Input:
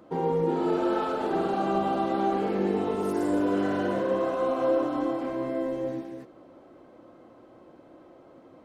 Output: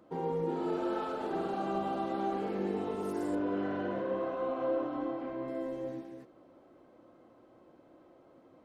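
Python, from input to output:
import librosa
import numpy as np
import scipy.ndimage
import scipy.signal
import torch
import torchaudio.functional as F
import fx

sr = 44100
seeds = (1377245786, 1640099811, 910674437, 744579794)

y = fx.lowpass(x, sr, hz=3300.0, slope=12, at=(3.35, 5.48))
y = y * 10.0 ** (-7.5 / 20.0)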